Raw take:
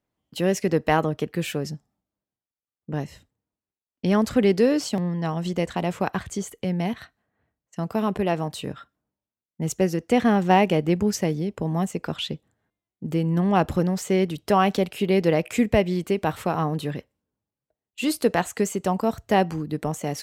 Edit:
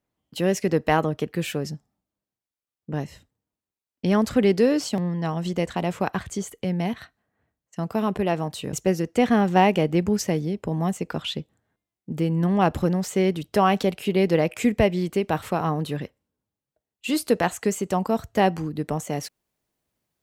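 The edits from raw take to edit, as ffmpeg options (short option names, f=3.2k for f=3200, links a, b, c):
-filter_complex "[0:a]asplit=2[a][b];[a]atrim=end=8.732[c];[b]atrim=start=9.668[d];[c][d]acrossfade=d=0.004:c1=hsin:c2=hsin"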